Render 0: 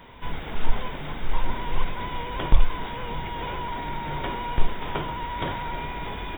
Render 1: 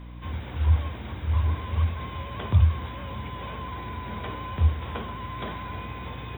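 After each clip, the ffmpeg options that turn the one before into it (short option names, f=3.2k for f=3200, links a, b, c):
-af "afreqshift=69,aeval=exprs='val(0)+0.02*(sin(2*PI*60*n/s)+sin(2*PI*2*60*n/s)/2+sin(2*PI*3*60*n/s)/3+sin(2*PI*4*60*n/s)/4+sin(2*PI*5*60*n/s)/5)':c=same,volume=-5.5dB"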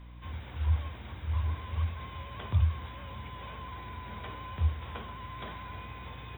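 -af "equalizer=f=280:t=o:w=2.5:g=-5,volume=-5.5dB"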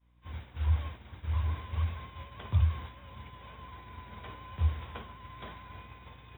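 -af "agate=range=-33dB:threshold=-36dB:ratio=3:detection=peak"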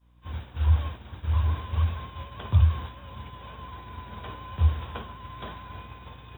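-af "equalizer=f=2.1k:t=o:w=0.3:g=-7.5,volume=6.5dB"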